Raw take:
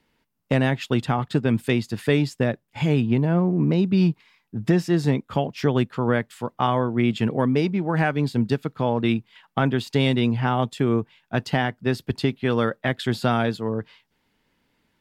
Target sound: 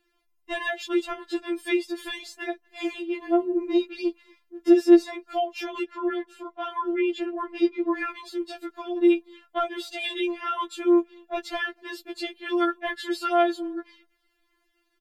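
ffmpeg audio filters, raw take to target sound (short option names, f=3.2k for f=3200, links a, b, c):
-filter_complex "[0:a]asettb=1/sr,asplit=3[a][b][c];[a]atrim=end=5.834[d];[b]atrim=start=5.83:end=8.1,asetpts=PTS-STARTPTS,afade=t=in:d=0.004:c=qsin,afade=t=out:st=2.266:d=0.004:c=qsin,lowpass=f=2.9k:p=1[e];[c]atrim=start=8.096[f];[d][e]acrossfade=d=0.004:c1=hsin:c2=qsin[g];[g][f]acrossfade=d=0.004:c1=qsin:c2=hsin,asplit=2[h][i];[i]adelay=240,highpass=300,lowpass=3.4k,asoftclip=type=hard:threshold=-15.5dB,volume=-30dB[j];[h][j]amix=inputs=2:normalize=0,afftfilt=real='re*4*eq(mod(b,16),0)':imag='im*4*eq(mod(b,16),0)':win_size=2048:overlap=0.75"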